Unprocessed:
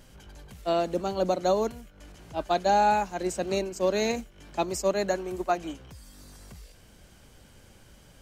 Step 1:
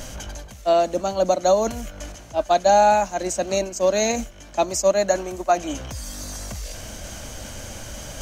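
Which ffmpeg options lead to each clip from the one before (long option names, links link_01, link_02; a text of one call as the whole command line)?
ffmpeg -i in.wav -af "equalizer=frequency=160:width_type=o:width=0.33:gain=-8,equalizer=frequency=400:width_type=o:width=0.33:gain=-7,equalizer=frequency=630:width_type=o:width=0.33:gain=7,equalizer=frequency=6300:width_type=o:width=0.33:gain=10,areverse,acompressor=mode=upward:threshold=-26dB:ratio=2.5,areverse,volume=4.5dB" out.wav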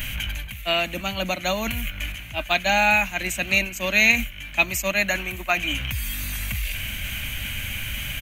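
ffmpeg -i in.wav -af "firequalizer=gain_entry='entry(120,0);entry(440,-18);entry(2400,14);entry(5200,-14);entry(13000,10)':delay=0.05:min_phase=1,volume=5dB" out.wav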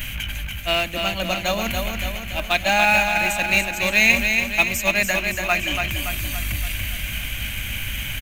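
ffmpeg -i in.wav -filter_complex "[0:a]asplit=2[link_01][link_02];[link_02]acrusher=bits=4:dc=4:mix=0:aa=0.000001,volume=-11dB[link_03];[link_01][link_03]amix=inputs=2:normalize=0,aecho=1:1:285|570|855|1140|1425|1710|1995:0.562|0.309|0.17|0.0936|0.0515|0.0283|0.0156,volume=-1dB" out.wav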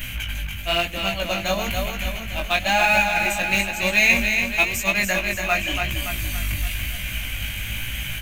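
ffmpeg -i in.wav -af "flanger=delay=15.5:depth=5.8:speed=1,volume=2dB" out.wav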